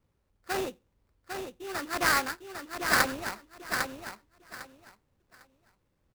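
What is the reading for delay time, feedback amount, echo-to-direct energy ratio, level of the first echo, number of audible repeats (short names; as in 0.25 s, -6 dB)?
0.802 s, 21%, -6.0 dB, -6.0 dB, 3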